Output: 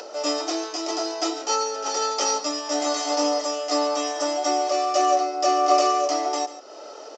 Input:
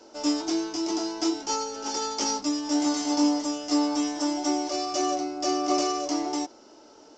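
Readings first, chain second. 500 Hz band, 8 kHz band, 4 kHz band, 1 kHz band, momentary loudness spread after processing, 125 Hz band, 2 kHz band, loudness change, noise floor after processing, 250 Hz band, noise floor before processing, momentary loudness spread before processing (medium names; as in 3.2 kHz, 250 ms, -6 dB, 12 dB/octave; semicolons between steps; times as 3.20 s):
+7.5 dB, +3.0 dB, +4.0 dB, +8.0 dB, 8 LU, no reading, +6.0 dB, +3.5 dB, -40 dBFS, -5.5 dB, -52 dBFS, 5 LU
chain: high-pass 340 Hz 24 dB/octave; treble shelf 5 kHz -8.5 dB; comb 1.6 ms, depth 54%; upward compressor, threshold -38 dBFS; delay 141 ms -14.5 dB; trim +6.5 dB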